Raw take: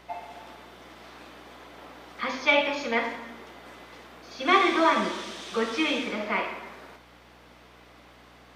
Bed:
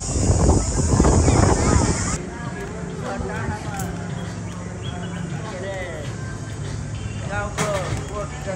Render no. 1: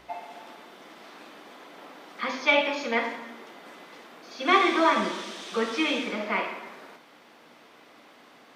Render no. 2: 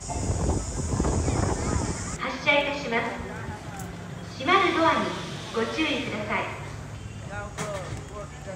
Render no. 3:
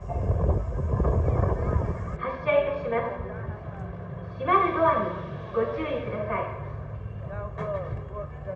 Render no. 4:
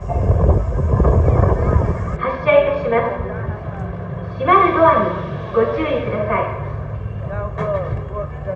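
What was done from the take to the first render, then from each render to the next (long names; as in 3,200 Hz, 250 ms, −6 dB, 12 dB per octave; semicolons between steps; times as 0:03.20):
hum removal 60 Hz, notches 3
mix in bed −9.5 dB
low-pass filter 1,200 Hz 12 dB per octave; comb filter 1.8 ms, depth 63%
level +10 dB; brickwall limiter −1 dBFS, peak gain reduction 2.5 dB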